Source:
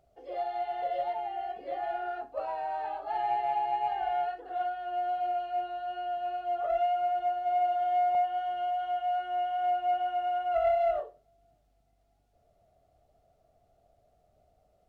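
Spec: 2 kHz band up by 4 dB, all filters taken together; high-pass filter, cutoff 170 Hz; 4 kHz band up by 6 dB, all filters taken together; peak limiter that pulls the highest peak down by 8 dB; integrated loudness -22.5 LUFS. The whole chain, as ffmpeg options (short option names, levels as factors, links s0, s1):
-af "highpass=170,equalizer=f=2000:t=o:g=4,equalizer=f=4000:t=o:g=7.5,volume=2.99,alimiter=limit=0.168:level=0:latency=1"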